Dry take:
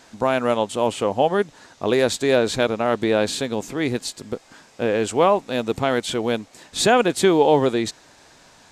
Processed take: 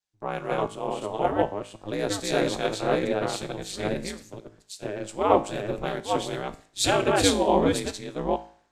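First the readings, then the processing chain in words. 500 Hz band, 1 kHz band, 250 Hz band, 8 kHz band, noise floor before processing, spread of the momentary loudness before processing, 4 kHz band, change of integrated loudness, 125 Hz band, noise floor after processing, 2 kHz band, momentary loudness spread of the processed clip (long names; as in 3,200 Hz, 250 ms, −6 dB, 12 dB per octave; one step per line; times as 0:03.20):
−6.5 dB, −4.0 dB, −5.5 dB, −2.5 dB, −52 dBFS, 11 LU, −4.0 dB, −5.5 dB, −3.5 dB, −64 dBFS, −6.5 dB, 14 LU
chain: delay that plays each chunk backwards 440 ms, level −0.5 dB
ring modulation 99 Hz
tuned comb filter 55 Hz, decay 0.69 s, harmonics all, mix 60%
multiband upward and downward expander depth 100%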